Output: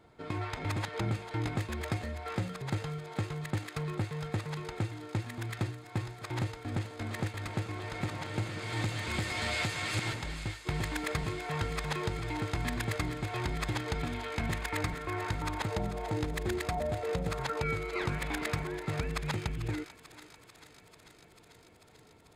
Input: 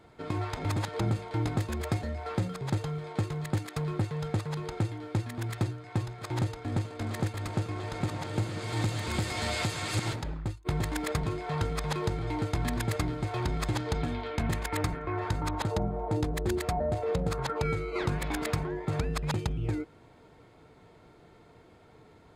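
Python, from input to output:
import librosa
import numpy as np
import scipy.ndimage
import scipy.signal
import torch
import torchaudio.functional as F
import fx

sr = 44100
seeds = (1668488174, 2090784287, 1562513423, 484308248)

y = fx.echo_thinned(x, sr, ms=442, feedback_pct=81, hz=870.0, wet_db=-11)
y = fx.dynamic_eq(y, sr, hz=2200.0, q=0.98, threshold_db=-49.0, ratio=4.0, max_db=6)
y = y * 10.0 ** (-4.0 / 20.0)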